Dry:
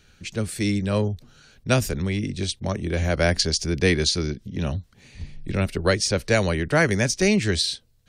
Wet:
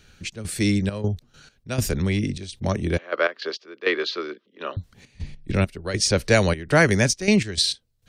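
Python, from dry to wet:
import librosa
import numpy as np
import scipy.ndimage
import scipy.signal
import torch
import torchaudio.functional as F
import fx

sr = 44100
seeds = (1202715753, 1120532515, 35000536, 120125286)

y = fx.step_gate(x, sr, bpm=101, pattern='xx.xxx.x.x..xx', floor_db=-12.0, edge_ms=4.5)
y = fx.cabinet(y, sr, low_hz=380.0, low_slope=24, high_hz=3400.0, hz=(750.0, 1200.0, 2200.0), db=(-8, 10, -4), at=(2.98, 4.77))
y = F.gain(torch.from_numpy(y), 2.5).numpy()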